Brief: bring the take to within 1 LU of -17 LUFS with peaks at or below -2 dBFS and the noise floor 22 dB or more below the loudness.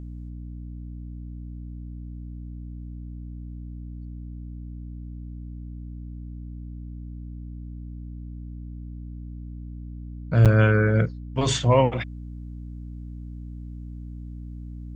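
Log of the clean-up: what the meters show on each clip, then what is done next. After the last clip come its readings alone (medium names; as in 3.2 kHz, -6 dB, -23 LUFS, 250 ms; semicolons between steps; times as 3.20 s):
dropouts 1; longest dropout 7.3 ms; hum 60 Hz; highest harmonic 300 Hz; hum level -35 dBFS; loudness -21.0 LUFS; peak level -6.5 dBFS; loudness target -17.0 LUFS
-> interpolate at 10.45 s, 7.3 ms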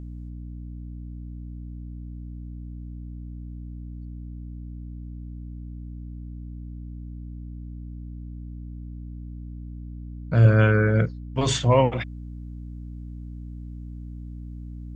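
dropouts 0; hum 60 Hz; highest harmonic 300 Hz; hum level -35 dBFS
-> hum notches 60/120/180/240/300 Hz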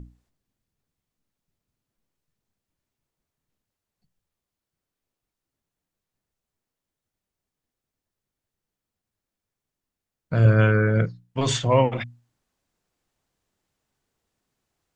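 hum not found; loudness -21.0 LUFS; peak level -7.0 dBFS; loudness target -17.0 LUFS
-> trim +4 dB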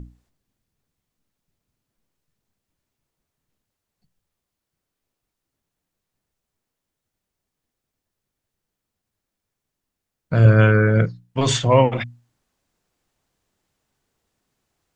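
loudness -17.0 LUFS; peak level -3.0 dBFS; noise floor -83 dBFS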